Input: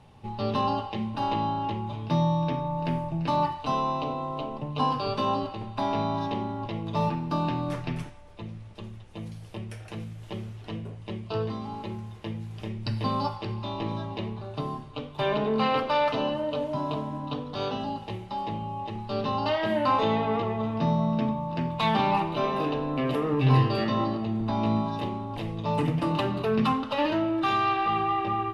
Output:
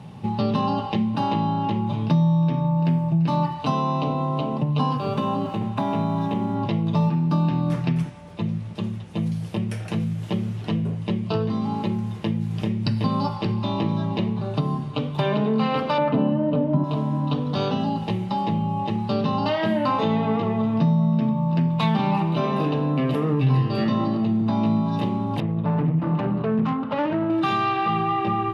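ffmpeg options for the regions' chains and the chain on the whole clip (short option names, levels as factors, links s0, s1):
-filter_complex "[0:a]asettb=1/sr,asplit=3[s0][s1][s2];[s0]atrim=end=4.974[s3];[s1]atrim=start=4.97:end=6.55,asetpts=PTS-STARTPTS,afade=t=in:d=0.004:c=qsin,afade=t=out:st=1.576:d=0.004:c=qsin,equalizer=f=4800:t=o:w=0.58:g=-10.5,acompressor=threshold=0.0251:ratio=1.5:attack=3.2:release=140:knee=1:detection=peak,aeval=exprs='sgn(val(0))*max(abs(val(0))-0.00133,0)':c=same[s4];[s2]atrim=start=6.546[s5];[s3][s4]acrossfade=d=0.004:c1=hsin:c2=qsin[s6];[s6][s5]acrossfade=d=0.004:c1=qsin:c2=hsin,asettb=1/sr,asplit=3[s7][s8][s9];[s7]atrim=end=15.984[s10];[s8]atrim=start=15.98:end=16.84,asetpts=PTS-STARTPTS,afade=t=in:d=0.004:c=qsin,afade=t=out:st=0.856:d=0.004:c=qsin,lowpass=2200,equalizer=f=220:w=0.63:g=10.5[s11];[s9]atrim=start=16.836[s12];[s10][s11]acrossfade=d=0.004:c1=hsin:c2=qsin[s13];[s13][s12]acrossfade=d=0.004:c1=qsin:c2=hsin,asettb=1/sr,asplit=3[s14][s15][s16];[s14]atrim=end=25.404[s17];[s15]atrim=start=25.4:end=27.3,asetpts=PTS-STARTPTS,afade=t=in:d=0.004:c=qsin,afade=t=out:st=1.896:d=0.004:c=qsin,lowpass=1800,aeval=exprs='(tanh(12.6*val(0)+0.7)-tanh(0.7))/12.6':c=same[s18];[s16]atrim=start=27.296[s19];[s17][s18]acrossfade=d=0.004:c1=hsin:c2=qsin[s20];[s20][s19]acrossfade=d=0.004:c1=qsin:c2=hsin,highpass=94,equalizer=f=170:t=o:w=0.9:g=12.5,acompressor=threshold=0.0316:ratio=3,volume=2.66"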